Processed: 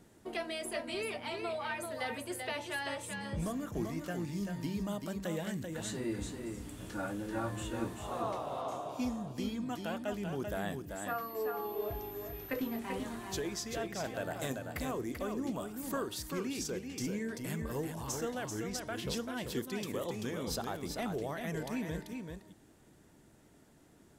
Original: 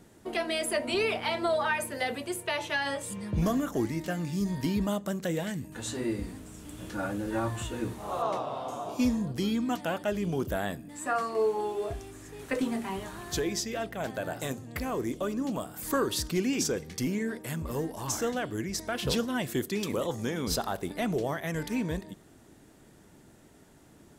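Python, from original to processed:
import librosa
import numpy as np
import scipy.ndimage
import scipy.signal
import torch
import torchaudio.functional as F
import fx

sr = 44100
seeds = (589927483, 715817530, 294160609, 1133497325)

y = fx.rider(x, sr, range_db=4, speed_s=0.5)
y = y + 10.0 ** (-5.5 / 20.0) * np.pad(y, (int(388 * sr / 1000.0), 0))[:len(y)]
y = fx.pwm(y, sr, carrier_hz=13000.0, at=(11.08, 12.79))
y = y * librosa.db_to_amplitude(-7.5)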